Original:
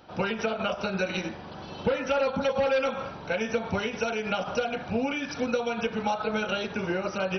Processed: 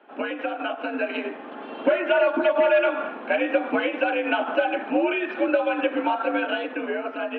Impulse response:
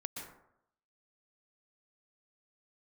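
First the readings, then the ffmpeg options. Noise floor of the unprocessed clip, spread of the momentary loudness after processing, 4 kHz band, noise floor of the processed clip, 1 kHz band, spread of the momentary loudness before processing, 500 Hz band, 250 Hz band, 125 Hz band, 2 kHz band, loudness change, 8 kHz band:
-41 dBFS, 9 LU, 0.0 dB, -38 dBFS, +4.5 dB, 5 LU, +5.0 dB, +4.0 dB, under -15 dB, +6.0 dB, +5.0 dB, no reading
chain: -af "dynaudnorm=f=280:g=9:m=2,acrusher=bits=7:mode=log:mix=0:aa=0.000001,highpass=f=160:t=q:w=0.5412,highpass=f=160:t=q:w=1.307,lowpass=f=2800:t=q:w=0.5176,lowpass=f=2800:t=q:w=0.7071,lowpass=f=2800:t=q:w=1.932,afreqshift=76,bandreject=f=970:w=10"

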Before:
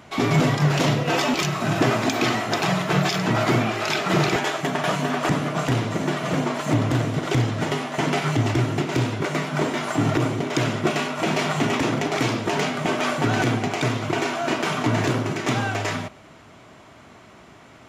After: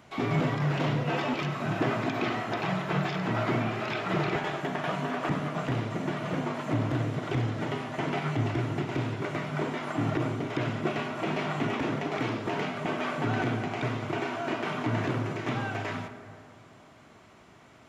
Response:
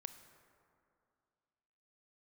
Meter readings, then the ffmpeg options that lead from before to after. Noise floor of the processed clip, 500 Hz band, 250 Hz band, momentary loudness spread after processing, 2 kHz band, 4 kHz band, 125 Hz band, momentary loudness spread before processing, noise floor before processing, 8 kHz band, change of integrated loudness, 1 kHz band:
-54 dBFS, -7.5 dB, -7.0 dB, 4 LU, -8.0 dB, -11.5 dB, -7.0 dB, 4 LU, -48 dBFS, -18.0 dB, -7.5 dB, -7.5 dB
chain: -filter_complex "[0:a]acrossover=split=3500[s0][s1];[s1]acompressor=threshold=0.00398:ratio=4:attack=1:release=60[s2];[s0][s2]amix=inputs=2:normalize=0[s3];[1:a]atrim=start_sample=2205[s4];[s3][s4]afir=irnorm=-1:irlink=0,volume=0.708"

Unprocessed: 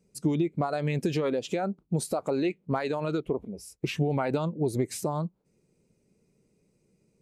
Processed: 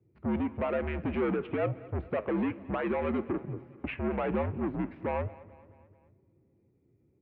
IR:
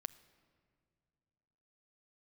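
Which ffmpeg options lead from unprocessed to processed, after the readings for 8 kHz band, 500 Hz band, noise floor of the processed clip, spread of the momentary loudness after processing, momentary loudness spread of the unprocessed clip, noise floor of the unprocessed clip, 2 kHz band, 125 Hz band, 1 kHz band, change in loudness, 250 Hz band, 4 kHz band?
under -40 dB, -2.5 dB, -69 dBFS, 6 LU, 6 LU, -72 dBFS, -0.5 dB, -6.0 dB, -2.5 dB, -3.0 dB, -2.0 dB, -12.0 dB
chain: -filter_complex "[0:a]aemphasis=mode=production:type=50fm,alimiter=limit=0.0891:level=0:latency=1:release=22,adynamicsmooth=sensitivity=2:basefreq=690,crystalizer=i=6:c=0,asoftclip=type=tanh:threshold=0.0335,flanger=delay=4.6:depth=6.1:regen=84:speed=1.1:shape=triangular,aecho=1:1:218|436|654|872:0.1|0.054|0.0292|0.0157,asplit=2[s0][s1];[1:a]atrim=start_sample=2205[s2];[s1][s2]afir=irnorm=-1:irlink=0,volume=2.51[s3];[s0][s3]amix=inputs=2:normalize=0,highpass=f=180:t=q:w=0.5412,highpass=f=180:t=q:w=1.307,lowpass=f=2600:t=q:w=0.5176,lowpass=f=2600:t=q:w=0.7071,lowpass=f=2600:t=q:w=1.932,afreqshift=-73"

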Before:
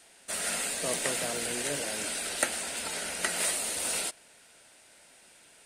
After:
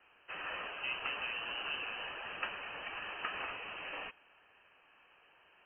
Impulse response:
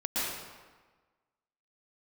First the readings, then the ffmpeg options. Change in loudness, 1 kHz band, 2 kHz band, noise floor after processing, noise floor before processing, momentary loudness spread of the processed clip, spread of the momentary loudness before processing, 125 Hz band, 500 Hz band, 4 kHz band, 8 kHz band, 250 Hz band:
-9.5 dB, -3.5 dB, -4.0 dB, -66 dBFS, -58 dBFS, 6 LU, 5 LU, -14.5 dB, -13.0 dB, -7.5 dB, under -40 dB, -15.5 dB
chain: -af "asoftclip=type=tanh:threshold=0.0708,lowpass=f=2700:t=q:w=0.5098,lowpass=f=2700:t=q:w=0.6013,lowpass=f=2700:t=q:w=0.9,lowpass=f=2700:t=q:w=2.563,afreqshift=-3200,volume=0.668"

